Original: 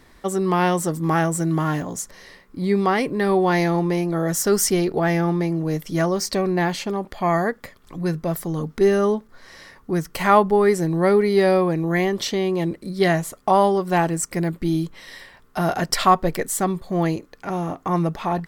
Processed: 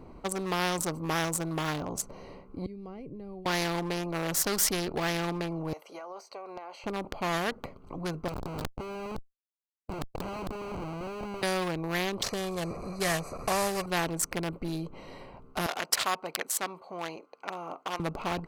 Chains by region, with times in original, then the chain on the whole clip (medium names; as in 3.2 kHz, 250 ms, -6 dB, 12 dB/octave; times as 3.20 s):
2.66–3.46 s: amplifier tone stack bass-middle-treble 10-0-1 + three bands compressed up and down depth 100%
5.73–6.84 s: high-pass 590 Hz 24 dB/octave + compression, threshold -35 dBFS
8.28–11.43 s: doubling 20 ms -10.5 dB + Schmitt trigger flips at -23 dBFS + compressor with a negative ratio -26 dBFS, ratio -0.5
12.23–13.86 s: one-bit delta coder 64 kbps, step -31.5 dBFS + Butterworth band-stop 3.2 kHz, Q 1.9 + comb 1.7 ms, depth 62%
15.66–18.00 s: high-pass 850 Hz + treble shelf 11 kHz -4.5 dB
whole clip: local Wiener filter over 25 samples; spectrum-flattening compressor 2:1; trim -3 dB